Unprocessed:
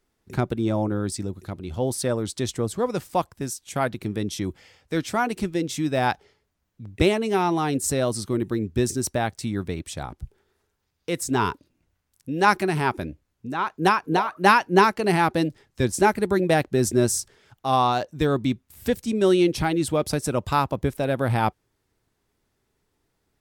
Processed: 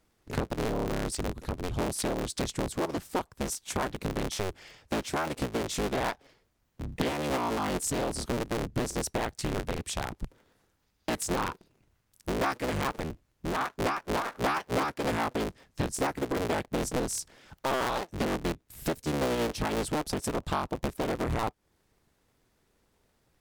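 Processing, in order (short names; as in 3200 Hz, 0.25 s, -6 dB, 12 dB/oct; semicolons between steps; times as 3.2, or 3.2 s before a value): cycle switcher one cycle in 3, inverted; compressor 4:1, threshold -31 dBFS, peak gain reduction 16.5 dB; Doppler distortion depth 0.58 ms; gain +2.5 dB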